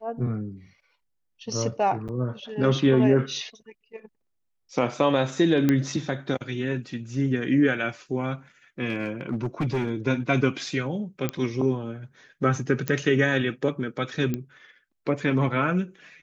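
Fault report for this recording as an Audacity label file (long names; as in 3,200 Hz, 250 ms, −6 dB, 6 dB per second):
2.080000	2.090000	drop-out 8 ms
5.690000	5.690000	click −9 dBFS
8.890000	9.910000	clipping −21.5 dBFS
11.290000	11.290000	click −12 dBFS
12.880000	12.880000	click −10 dBFS
14.340000	14.340000	click −15 dBFS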